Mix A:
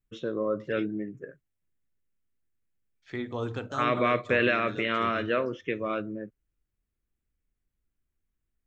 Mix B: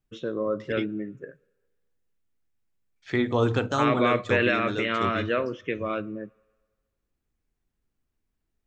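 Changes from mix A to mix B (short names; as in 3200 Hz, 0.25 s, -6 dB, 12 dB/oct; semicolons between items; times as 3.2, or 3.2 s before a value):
second voice +9.5 dB; reverb: on, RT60 1.5 s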